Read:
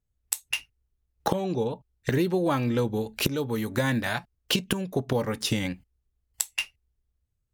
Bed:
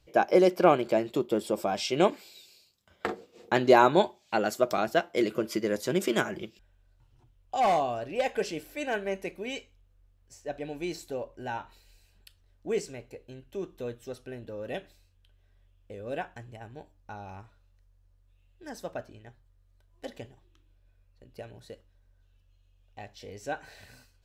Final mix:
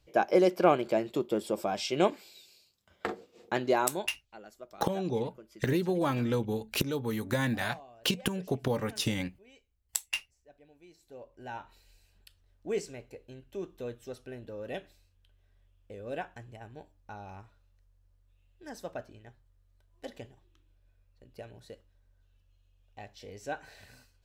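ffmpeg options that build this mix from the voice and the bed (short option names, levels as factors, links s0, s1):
-filter_complex "[0:a]adelay=3550,volume=0.631[s0];[1:a]volume=7.5,afade=t=out:st=3.25:d=0.93:silence=0.1,afade=t=in:st=10.98:d=0.86:silence=0.1[s1];[s0][s1]amix=inputs=2:normalize=0"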